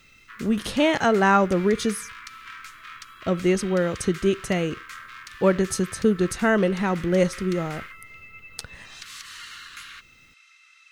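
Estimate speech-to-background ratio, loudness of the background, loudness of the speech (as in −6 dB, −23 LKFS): 17.5 dB, −40.5 LKFS, −23.0 LKFS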